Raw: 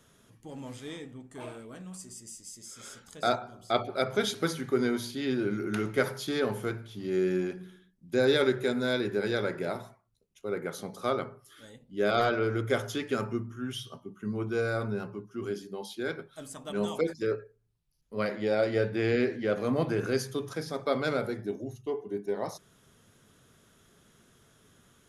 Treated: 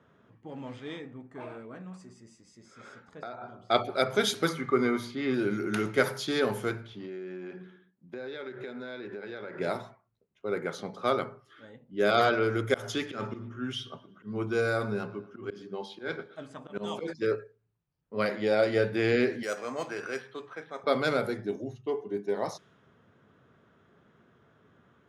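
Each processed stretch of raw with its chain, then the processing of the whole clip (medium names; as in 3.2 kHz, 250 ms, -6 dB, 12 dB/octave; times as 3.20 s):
0.99–3.44 s: peaking EQ 3.1 kHz -7.5 dB 0.28 oct + compression 16:1, threshold -37 dBFS
4.49–5.34 s: treble shelf 2.6 kHz -11 dB + small resonant body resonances 1.2/2.1 kHz, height 15 dB, ringing for 35 ms
6.93–9.59 s: high-pass 180 Hz 6 dB/octave + compression 12:1, threshold -37 dBFS
12.74–17.08 s: slow attack 136 ms + feedback delay 117 ms, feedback 52%, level -19 dB
19.43–20.84 s: high-pass 1.1 kHz 6 dB/octave + careless resampling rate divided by 6×, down filtered, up hold
whole clip: high-pass 85 Hz; level-controlled noise filter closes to 1.5 kHz, open at -26.5 dBFS; bass shelf 470 Hz -3.5 dB; trim +3.5 dB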